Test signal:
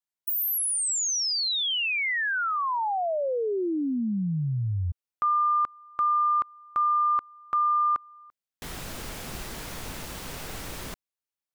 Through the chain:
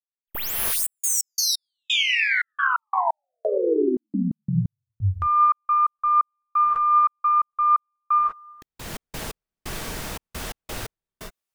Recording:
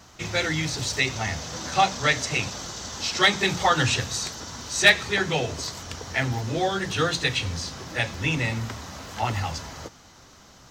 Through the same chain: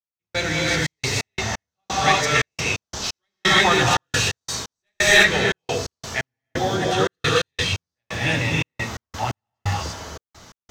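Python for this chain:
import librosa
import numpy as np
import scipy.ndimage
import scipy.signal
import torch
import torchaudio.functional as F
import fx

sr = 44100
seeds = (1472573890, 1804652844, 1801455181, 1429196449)

y = fx.tracing_dist(x, sr, depth_ms=0.025)
y = fx.rev_gated(y, sr, seeds[0], gate_ms=370, shape='rising', drr_db=-4.5)
y = fx.step_gate(y, sr, bpm=87, pattern='..xxx.x.x', floor_db=-60.0, edge_ms=4.5)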